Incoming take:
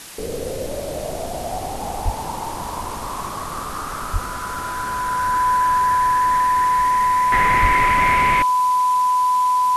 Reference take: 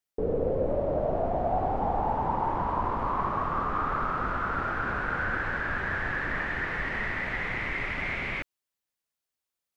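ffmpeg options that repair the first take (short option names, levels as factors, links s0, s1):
-filter_complex "[0:a]bandreject=f=1000:w=30,asplit=3[s0][s1][s2];[s0]afade=t=out:st=2.04:d=0.02[s3];[s1]highpass=f=140:w=0.5412,highpass=f=140:w=1.3066,afade=t=in:st=2.04:d=0.02,afade=t=out:st=2.16:d=0.02[s4];[s2]afade=t=in:st=2.16:d=0.02[s5];[s3][s4][s5]amix=inputs=3:normalize=0,asplit=3[s6][s7][s8];[s6]afade=t=out:st=4.12:d=0.02[s9];[s7]highpass=f=140:w=0.5412,highpass=f=140:w=1.3066,afade=t=in:st=4.12:d=0.02,afade=t=out:st=4.24:d=0.02[s10];[s8]afade=t=in:st=4.24:d=0.02[s11];[s9][s10][s11]amix=inputs=3:normalize=0,asplit=3[s12][s13][s14];[s12]afade=t=out:st=7.61:d=0.02[s15];[s13]highpass=f=140:w=0.5412,highpass=f=140:w=1.3066,afade=t=in:st=7.61:d=0.02,afade=t=out:st=7.73:d=0.02[s16];[s14]afade=t=in:st=7.73:d=0.02[s17];[s15][s16][s17]amix=inputs=3:normalize=0,afwtdn=0.016,asetnsamples=n=441:p=0,asendcmd='7.32 volume volume -11dB',volume=1"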